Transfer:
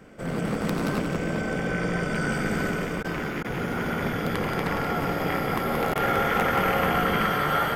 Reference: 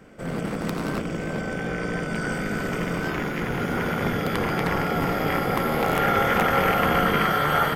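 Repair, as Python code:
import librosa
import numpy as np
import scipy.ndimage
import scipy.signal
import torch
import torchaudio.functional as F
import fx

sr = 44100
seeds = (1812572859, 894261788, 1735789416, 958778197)

y = fx.fix_interpolate(x, sr, at_s=(3.03, 3.43, 5.94), length_ms=13.0)
y = fx.fix_echo_inverse(y, sr, delay_ms=178, level_db=-5.5)
y = fx.gain(y, sr, db=fx.steps((0.0, 0.0), (2.71, 3.5)))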